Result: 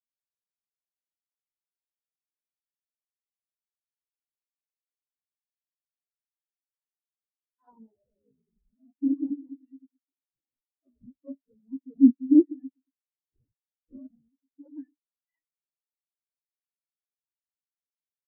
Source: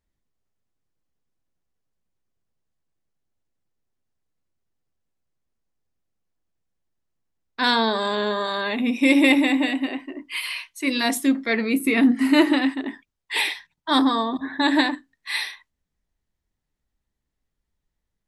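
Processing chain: decimation with a swept rate 30×, swing 160% 0.38 Hz; granulator 124 ms, grains 21 per s, spray 11 ms, pitch spread up and down by 0 st; spectral contrast expander 4:1

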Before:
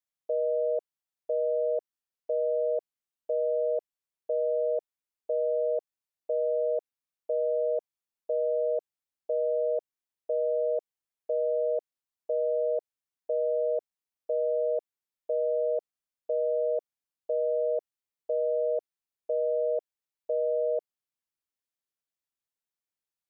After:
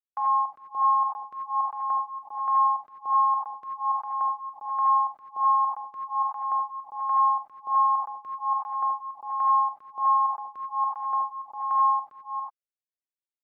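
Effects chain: gate with hold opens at -28 dBFS; speed mistake 45 rpm record played at 78 rpm; delay 402 ms -7 dB; gated-style reverb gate 110 ms rising, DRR -3 dB; lamp-driven phase shifter 1.3 Hz

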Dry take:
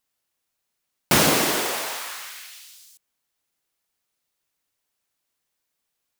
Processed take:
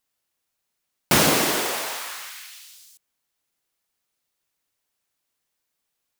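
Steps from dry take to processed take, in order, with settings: 2.30–2.71 s: steep high-pass 710 Hz 36 dB/octave

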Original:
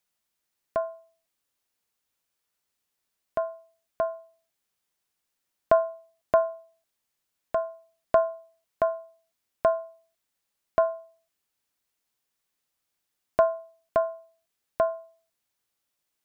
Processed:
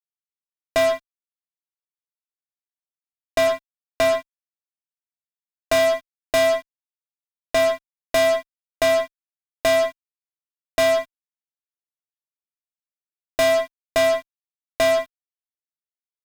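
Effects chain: 3.47–5.79 s: bass shelf 420 Hz -6 dB; fuzz box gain 42 dB, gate -49 dBFS; trim -2.5 dB

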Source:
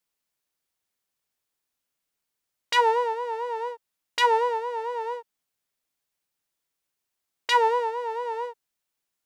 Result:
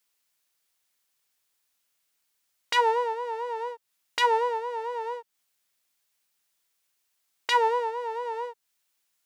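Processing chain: tape noise reduction on one side only encoder only; trim -2 dB

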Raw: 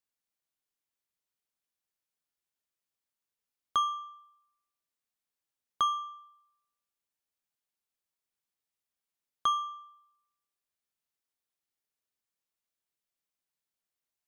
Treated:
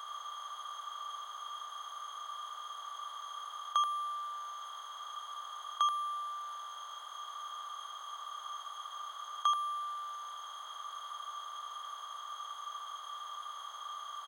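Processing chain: spectral levelling over time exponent 0.2; high-pass 640 Hz 24 dB/octave; delay 81 ms -4.5 dB; trim -3.5 dB

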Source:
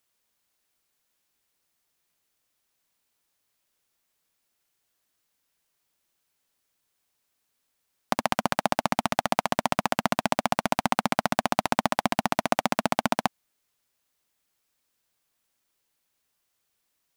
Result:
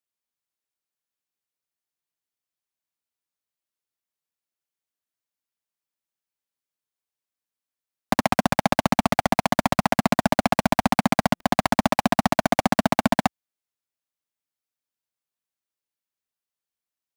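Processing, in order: high-pass 60 Hz 24 dB/octave; waveshaping leveller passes 5; buffer glitch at 11.35 s, samples 256, times 8; trim -5.5 dB

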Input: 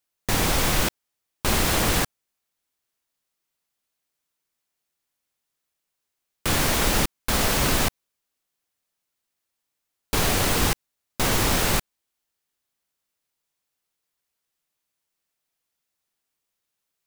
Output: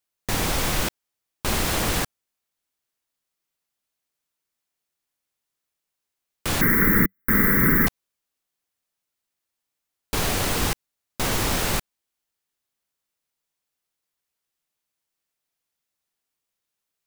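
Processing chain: 6.61–7.87 s: FFT filter 100 Hz 0 dB, 190 Hz +12 dB, 470 Hz +3 dB, 670 Hz -19 dB, 1.3 kHz +5 dB, 2 kHz +12 dB, 2.8 kHz -27 dB, 4.9 kHz -23 dB, 9 kHz -9 dB, 15 kHz +13 dB; trim -2 dB

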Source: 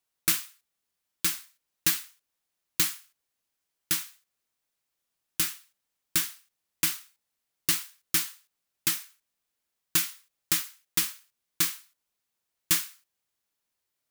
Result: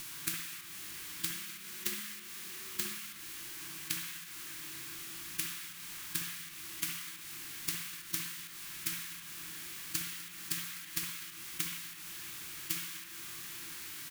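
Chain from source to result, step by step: spectral levelling over time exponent 0.4; compression 6:1, threshold -37 dBFS, peak gain reduction 19.5 dB; 1.31–2.94 s: frequency shift +37 Hz; echo from a far wall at 43 m, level -13 dB; reverberation RT60 0.90 s, pre-delay 58 ms, DRR 2 dB; spectral contrast expander 1.5:1; trim +1.5 dB

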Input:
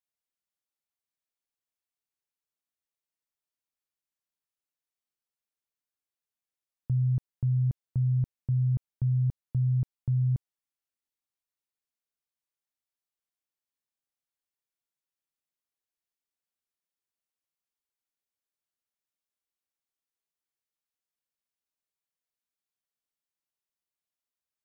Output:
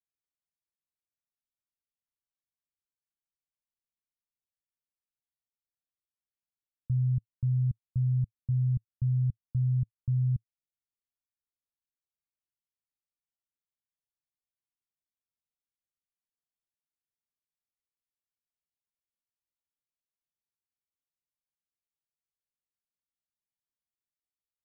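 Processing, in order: FFT filter 110 Hz 0 dB, 260 Hz -7 dB, 400 Hz -17 dB

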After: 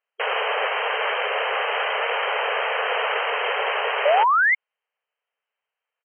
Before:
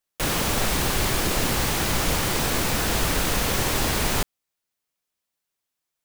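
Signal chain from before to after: harmony voices -5 st -4 dB; painted sound rise, 4.05–4.55 s, 550–2200 Hz -21 dBFS; brick-wall FIR band-pass 410–3200 Hz; trim +3.5 dB

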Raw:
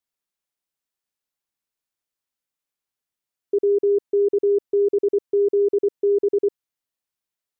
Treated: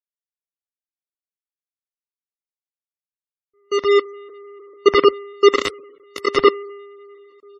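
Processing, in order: backward echo that repeats 223 ms, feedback 71%, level -11 dB; Bessel low-pass 520 Hz, order 6; on a send: multi-tap echo 47/54/109/134/664/751 ms -9/-6/-14/-10.5/-5/-6 dB; on the sum: FDN reverb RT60 0.32 s, low-frequency decay 0.9×, high-frequency decay 0.45×, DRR 6.5 dB; random-step tremolo 3.5 Hz, depth 80%; companded quantiser 2-bit; gain riding within 5 dB 0.5 s; spectral gate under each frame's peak -25 dB strong; three bands expanded up and down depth 100%; trim -8 dB

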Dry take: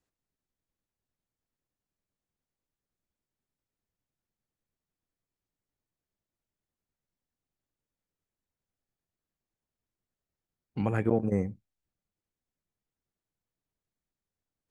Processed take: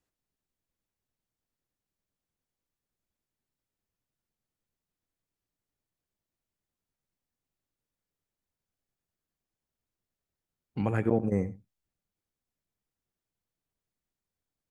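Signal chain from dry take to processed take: delay 88 ms -18 dB

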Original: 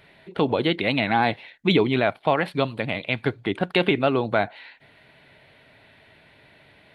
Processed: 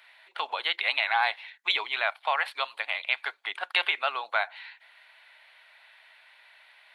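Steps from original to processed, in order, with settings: high-pass 880 Hz 24 dB/octave

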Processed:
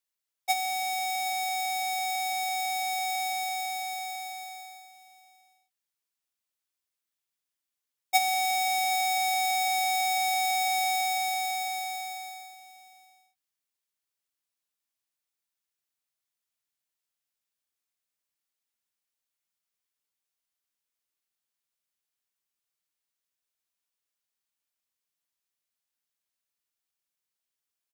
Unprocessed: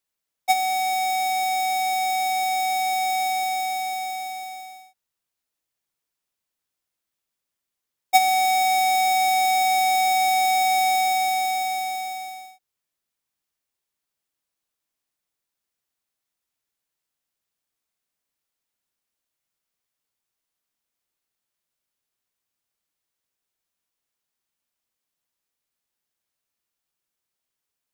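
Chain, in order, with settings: tilt shelf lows -3.5 dB, about 1.1 kHz; on a send: delay 768 ms -16 dB; on the sum: trim -7 dB

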